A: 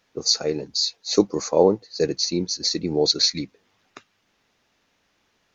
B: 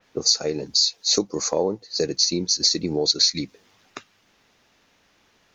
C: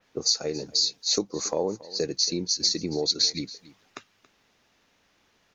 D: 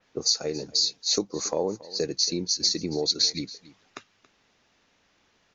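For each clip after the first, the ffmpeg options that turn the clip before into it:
-af "acompressor=threshold=0.0355:ratio=3,adynamicequalizer=threshold=0.00708:dfrequency=3700:dqfactor=0.7:tfrequency=3700:tqfactor=0.7:attack=5:release=100:ratio=0.375:range=3.5:mode=boostabove:tftype=highshelf,volume=2"
-af "aecho=1:1:278:0.106,volume=0.596"
-af "aresample=16000,aresample=44100"

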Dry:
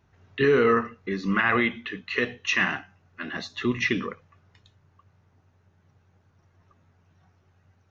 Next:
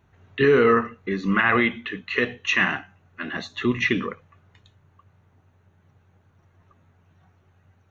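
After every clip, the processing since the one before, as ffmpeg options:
-af "equalizer=f=5100:w=4.4:g=-12.5,volume=1.41"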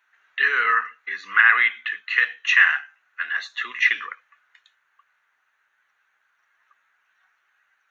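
-af "highpass=f=1600:t=q:w=2.7,volume=0.891"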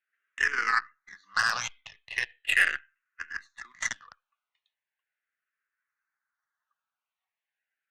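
-filter_complex "[0:a]aeval=exprs='0.841*(cos(1*acos(clip(val(0)/0.841,-1,1)))-cos(1*PI/2))+0.0188*(cos(4*acos(clip(val(0)/0.841,-1,1)))-cos(4*PI/2))+0.0376*(cos(5*acos(clip(val(0)/0.841,-1,1)))-cos(5*PI/2))+0.0237*(cos(6*acos(clip(val(0)/0.841,-1,1)))-cos(6*PI/2))+0.133*(cos(7*acos(clip(val(0)/0.841,-1,1)))-cos(7*PI/2))':c=same,alimiter=level_in=2.82:limit=0.891:release=50:level=0:latency=1,asplit=2[s0][s1];[s1]afreqshift=-0.38[s2];[s0][s2]amix=inputs=2:normalize=1,volume=0.398"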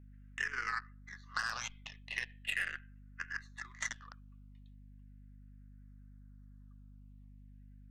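-af "acompressor=threshold=0.02:ratio=3,aeval=exprs='val(0)+0.00251*(sin(2*PI*50*n/s)+sin(2*PI*2*50*n/s)/2+sin(2*PI*3*50*n/s)/3+sin(2*PI*4*50*n/s)/4+sin(2*PI*5*50*n/s)/5)':c=same,volume=0.794"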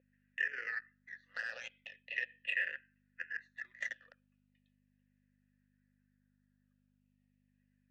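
-filter_complex "[0:a]asplit=3[s0][s1][s2];[s0]bandpass=f=530:t=q:w=8,volume=1[s3];[s1]bandpass=f=1840:t=q:w=8,volume=0.501[s4];[s2]bandpass=f=2480:t=q:w=8,volume=0.355[s5];[s3][s4][s5]amix=inputs=3:normalize=0,volume=3.16"

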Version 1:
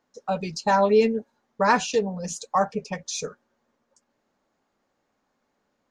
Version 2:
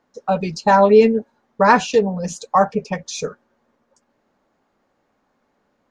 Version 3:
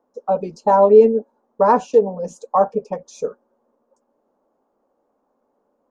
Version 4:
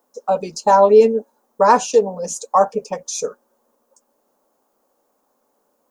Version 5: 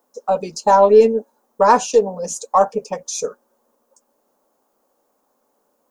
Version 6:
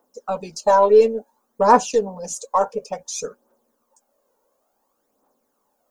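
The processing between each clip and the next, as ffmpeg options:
-af "highshelf=f=3800:g=-9,volume=2.37"
-af "equalizer=f=125:t=o:w=1:g=-9,equalizer=f=250:t=o:w=1:g=6,equalizer=f=500:t=o:w=1:g=10,equalizer=f=1000:t=o:w=1:g=7,equalizer=f=2000:t=o:w=1:g=-10,equalizer=f=4000:t=o:w=1:g=-8,volume=0.376"
-af "crystalizer=i=10:c=0,volume=0.794"
-af "aeval=exprs='0.891*(cos(1*acos(clip(val(0)/0.891,-1,1)))-cos(1*PI/2))+0.00631*(cos(6*acos(clip(val(0)/0.891,-1,1)))-cos(6*PI/2))':c=same"
-af "aphaser=in_gain=1:out_gain=1:delay=2.2:decay=0.52:speed=0.57:type=triangular,volume=0.631"

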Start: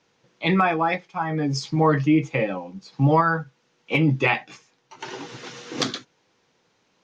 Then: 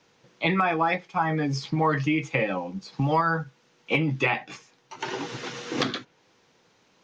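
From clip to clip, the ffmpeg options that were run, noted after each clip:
-filter_complex "[0:a]acrossover=split=960|3700[s0][s1][s2];[s0]acompressor=threshold=0.0398:ratio=4[s3];[s1]acompressor=threshold=0.0398:ratio=4[s4];[s2]acompressor=threshold=0.00398:ratio=4[s5];[s3][s4][s5]amix=inputs=3:normalize=0,volume=1.5"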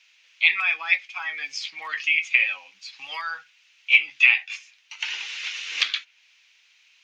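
-af "highpass=f=2500:t=q:w=3.4,volume=1.26"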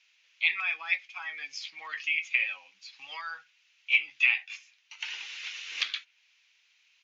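-af "aresample=16000,aresample=44100,volume=0.422"

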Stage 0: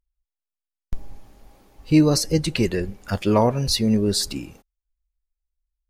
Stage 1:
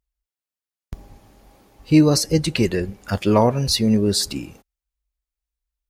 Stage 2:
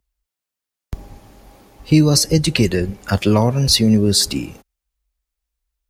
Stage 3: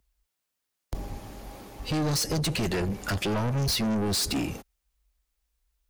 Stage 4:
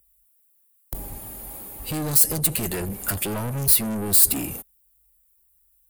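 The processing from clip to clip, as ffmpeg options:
-af "highpass=45,volume=1.26"
-filter_complex "[0:a]acrossover=split=190|3000[s0][s1][s2];[s1]acompressor=threshold=0.0708:ratio=3[s3];[s0][s3][s2]amix=inputs=3:normalize=0,volume=2"
-af "alimiter=limit=0.299:level=0:latency=1:release=173,asoftclip=type=tanh:threshold=0.0422,volume=1.41"
-af "aexciter=amount=10.2:drive=5.3:freq=8300,volume=0.891"

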